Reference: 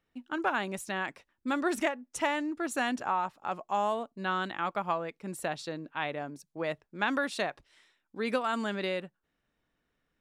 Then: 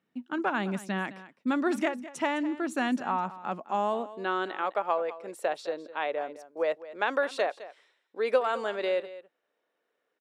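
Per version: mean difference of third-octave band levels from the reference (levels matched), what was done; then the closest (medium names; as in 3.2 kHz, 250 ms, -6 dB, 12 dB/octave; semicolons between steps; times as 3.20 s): 5.0 dB: treble shelf 6.7 kHz -8.5 dB; delay 209 ms -16 dB; high-pass sweep 190 Hz -> 480 Hz, 3.45–4.74 s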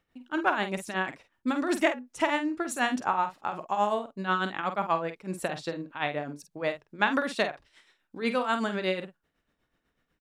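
3.0 dB: treble shelf 8.4 kHz -3.5 dB; tremolo 8.1 Hz, depth 74%; doubling 48 ms -9 dB; trim +6 dB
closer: second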